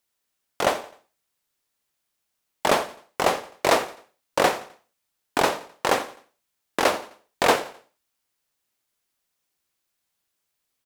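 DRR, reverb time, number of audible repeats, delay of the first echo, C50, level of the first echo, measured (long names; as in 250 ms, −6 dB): no reverb audible, no reverb audible, 3, 86 ms, no reverb audible, −18.5 dB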